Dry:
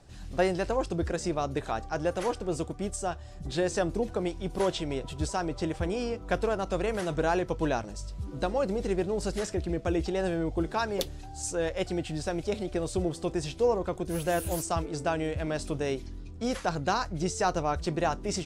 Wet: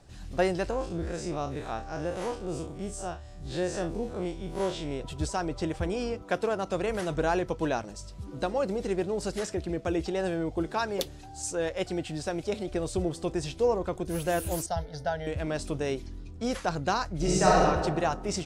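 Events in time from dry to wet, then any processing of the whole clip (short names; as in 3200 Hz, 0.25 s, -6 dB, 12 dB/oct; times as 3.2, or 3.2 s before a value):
0.7–5 time blur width 81 ms
6.22–6.88 HPF 230 Hz -> 66 Hz
7.51–12.68 low shelf 66 Hz -10.5 dB
14.66–15.27 fixed phaser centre 1700 Hz, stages 8
17.16–17.61 reverb throw, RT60 1.5 s, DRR -6 dB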